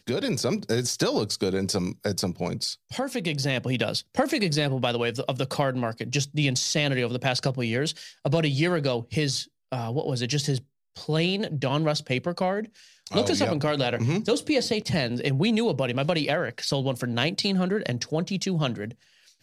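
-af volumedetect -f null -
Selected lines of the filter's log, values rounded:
mean_volume: -26.4 dB
max_volume: -7.1 dB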